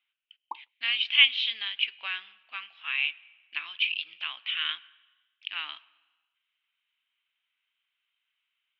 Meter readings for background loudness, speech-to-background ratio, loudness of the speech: -45.0 LUFS, 18.0 dB, -27.0 LUFS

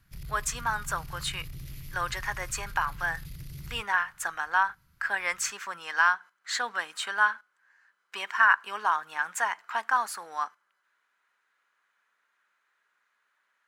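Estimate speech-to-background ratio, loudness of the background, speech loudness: 15.0 dB, -44.0 LUFS, -29.0 LUFS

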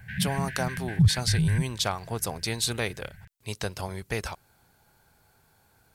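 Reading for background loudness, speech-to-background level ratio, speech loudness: -27.5 LUFS, -3.5 dB, -31.0 LUFS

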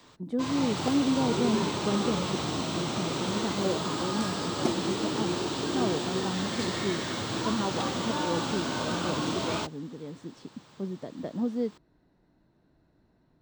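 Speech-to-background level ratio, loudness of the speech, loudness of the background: -2.5 dB, -33.5 LUFS, -31.0 LUFS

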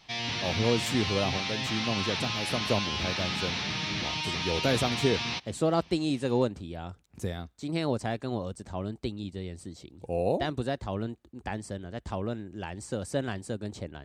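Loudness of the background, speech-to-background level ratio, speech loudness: -30.5 LUFS, -2.0 dB, -32.5 LUFS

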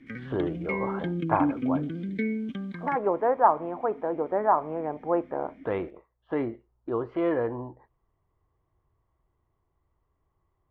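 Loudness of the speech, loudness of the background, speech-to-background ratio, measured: -29.0 LUFS, -31.5 LUFS, 2.5 dB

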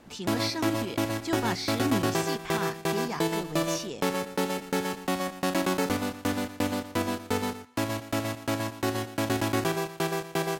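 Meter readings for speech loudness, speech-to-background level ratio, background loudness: -34.0 LUFS, -4.5 dB, -29.5 LUFS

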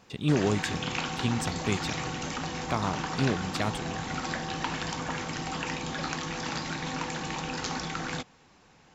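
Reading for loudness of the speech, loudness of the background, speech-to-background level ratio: -31.5 LUFS, -33.5 LUFS, 2.0 dB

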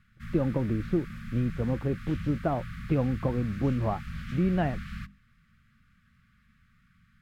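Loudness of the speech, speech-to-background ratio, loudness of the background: -30.0 LUFS, 10.5 dB, -40.5 LUFS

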